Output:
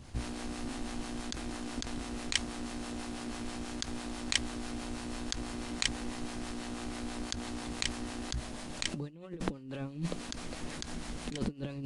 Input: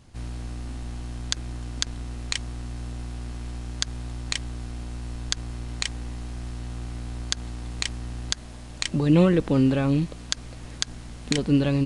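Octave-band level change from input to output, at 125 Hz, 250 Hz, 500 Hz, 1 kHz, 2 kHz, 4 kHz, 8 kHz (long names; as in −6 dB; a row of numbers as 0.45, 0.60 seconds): −15.5, −12.0, −13.0, −3.5, −4.5, −6.0, −6.5 decibels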